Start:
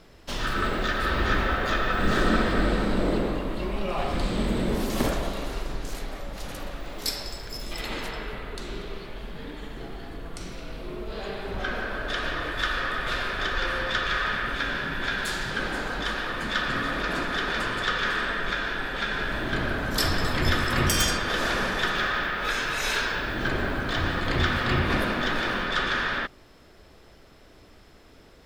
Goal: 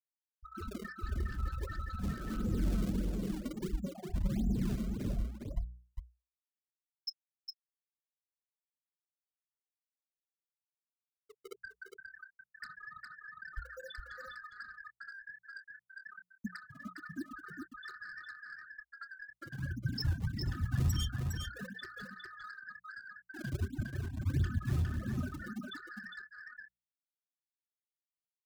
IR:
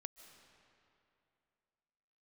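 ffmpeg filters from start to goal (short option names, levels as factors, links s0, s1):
-filter_complex "[0:a]highpass=57,afftfilt=real='re*gte(hypot(re,im),0.224)':imag='im*gte(hypot(re,im),0.224)':win_size=1024:overlap=0.75,equalizer=f=250:t=o:w=0.67:g=-4,equalizer=f=2500:t=o:w=0.67:g=6,equalizer=f=10000:t=o:w=0.67:g=6,acrossover=split=520|3400[s0][s1][s2];[s0]acrusher=samples=29:mix=1:aa=0.000001:lfo=1:lforange=46.4:lforate=1.5[s3];[s1]asplit=2[s4][s5];[s5]adelay=26,volume=0.398[s6];[s4][s6]amix=inputs=2:normalize=0[s7];[s3][s7][s2]amix=inputs=3:normalize=0,asoftclip=type=tanh:threshold=0.0562,bandreject=f=60:t=h:w=6,bandreject=f=120:t=h:w=6,bandreject=f=180:t=h:w=6,tremolo=f=1.1:d=0.88,acompressor=threshold=0.00447:ratio=4,bass=f=250:g=11,treble=f=4000:g=1,asplit=2[s8][s9];[s9]aecho=0:1:408:0.531[s10];[s8][s10]amix=inputs=2:normalize=0,acrossover=split=350|3000[s11][s12][s13];[s12]acompressor=threshold=0.00178:ratio=4[s14];[s11][s14][s13]amix=inputs=3:normalize=0,volume=2.24"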